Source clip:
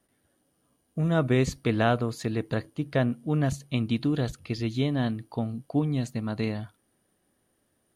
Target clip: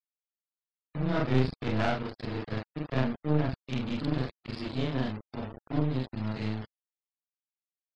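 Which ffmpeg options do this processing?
-af "afftfilt=real='re':imag='-im':win_size=4096:overlap=0.75,aresample=11025,aeval=exprs='val(0)*gte(abs(val(0)),0.0158)':c=same,aresample=44100,afftfilt=real='re*gte(hypot(re,im),0.00501)':imag='im*gte(hypot(re,im),0.00501)':win_size=1024:overlap=0.75,aeval=exprs='0.2*(cos(1*acos(clip(val(0)/0.2,-1,1)))-cos(1*PI/2))+0.0891*(cos(2*acos(clip(val(0)/0.2,-1,1)))-cos(2*PI/2))+0.0141*(cos(6*acos(clip(val(0)/0.2,-1,1)))-cos(6*PI/2))':c=same"

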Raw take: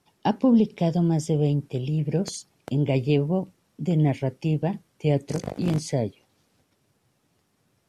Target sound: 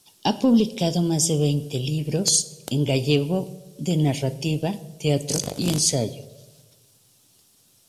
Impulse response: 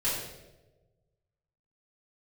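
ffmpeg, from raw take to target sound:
-filter_complex "[0:a]asplit=2[s0][s1];[1:a]atrim=start_sample=2205[s2];[s1][s2]afir=irnorm=-1:irlink=0,volume=0.0794[s3];[s0][s3]amix=inputs=2:normalize=0,aeval=exprs='0.398*(cos(1*acos(clip(val(0)/0.398,-1,1)))-cos(1*PI/2))+0.00891*(cos(5*acos(clip(val(0)/0.398,-1,1)))-cos(5*PI/2))':c=same,aexciter=amount=5.7:drive=3.6:freq=2900"

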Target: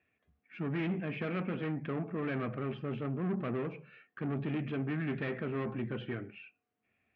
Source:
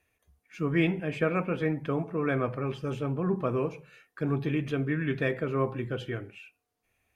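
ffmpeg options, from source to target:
-af "aeval=exprs='(tanh(35.5*val(0)+0.35)-tanh(0.35))/35.5':c=same,highpass=110,equalizer=f=220:t=q:w=4:g=7,equalizer=f=510:t=q:w=4:g=-4,equalizer=f=930:t=q:w=4:g=-7,lowpass=f=2900:w=0.5412,lowpass=f=2900:w=1.3066"

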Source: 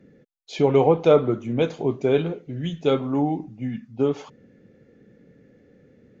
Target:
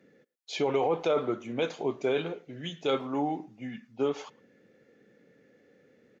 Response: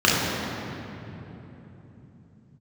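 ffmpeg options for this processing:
-filter_complex "[0:a]highpass=f=700:p=1,alimiter=limit=0.126:level=0:latency=1:release=18,asplit=2[s0][s1];[s1]adelay=110,highpass=300,lowpass=3400,asoftclip=type=hard:threshold=0.0447,volume=0.0631[s2];[s0][s2]amix=inputs=2:normalize=0"

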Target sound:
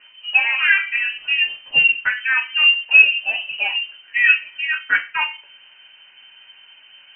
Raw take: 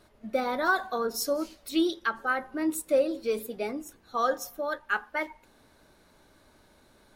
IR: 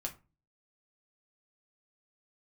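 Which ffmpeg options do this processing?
-filter_complex "[0:a]asplit=2[s0][s1];[s1]volume=17.8,asoftclip=hard,volume=0.0562,volume=0.316[s2];[s0][s2]amix=inputs=2:normalize=0[s3];[1:a]atrim=start_sample=2205[s4];[s3][s4]afir=irnorm=-1:irlink=0,lowpass=f=2600:t=q:w=0.5098,lowpass=f=2600:t=q:w=0.6013,lowpass=f=2600:t=q:w=0.9,lowpass=f=2600:t=q:w=2.563,afreqshift=-3100,volume=2.51"

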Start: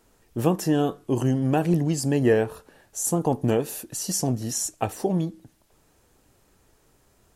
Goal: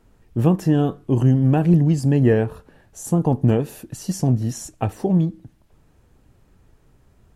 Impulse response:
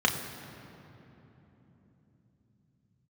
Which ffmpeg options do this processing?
-af "bass=f=250:g=10,treble=f=4000:g=-8"

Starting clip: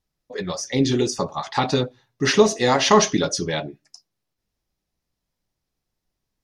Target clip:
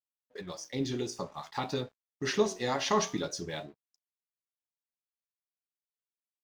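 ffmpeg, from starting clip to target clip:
-af "flanger=delay=9.3:depth=8.6:regen=81:speed=0.53:shape=sinusoidal,aeval=exprs='sgn(val(0))*max(abs(val(0))-0.00316,0)':c=same,agate=range=0.178:threshold=0.00891:ratio=16:detection=peak,volume=0.398"

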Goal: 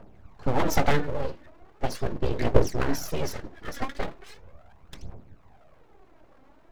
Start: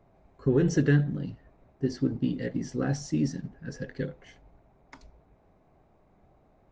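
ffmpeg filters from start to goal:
-af "aphaser=in_gain=1:out_gain=1:delay=3.8:decay=0.76:speed=0.39:type=triangular,aeval=exprs='abs(val(0))':c=same,volume=1.68"

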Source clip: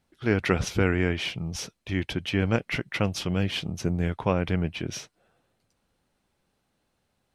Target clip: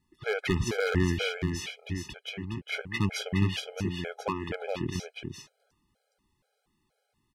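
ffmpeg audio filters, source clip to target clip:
-filter_complex "[0:a]asettb=1/sr,asplit=3[s0][s1][s2];[s0]atrim=end=1.514[s3];[s1]atrim=start=1.51:end=2.69,asetpts=PTS-STARTPTS,afade=t=in:d=0.004:c=qsin,afade=t=out:st=1.176:d=0.004:c=qsin,acompressor=threshold=0.0282:ratio=6[s4];[s2]atrim=start=2.686[s5];[s3][s4]acrossfade=d=0.004:c1=hsin:c2=qsin[s6];[s6][s5]acrossfade=d=0.004:c1=qsin:c2=hsin,asettb=1/sr,asplit=3[s7][s8][s9];[s7]atrim=end=3.494[s10];[s8]atrim=start=3.49:end=4.54,asetpts=PTS-STARTPTS,afade=t=in:d=0.004:c=qsin,afade=t=out:st=1.046:d=0.004:c=qsin,bass=f=250:g=-12,treble=f=4000:g=-3[s11];[s9]atrim=start=4.536[s12];[s10][s11]acrossfade=d=0.004:c1=hsin:c2=qsin[s13];[s13][s12]acrossfade=d=0.004:c1=qsin:c2=hsin,aeval=exprs='0.224*(abs(mod(val(0)/0.224+3,4)-2)-1)':c=same,aecho=1:1:415:0.562,afftfilt=real='re*gt(sin(2*PI*2.1*pts/sr)*(1-2*mod(floor(b*sr/1024/420),2)),0)':imag='im*gt(sin(2*PI*2.1*pts/sr)*(1-2*mod(floor(b*sr/1024/420),2)),0)':win_size=1024:overlap=0.75"

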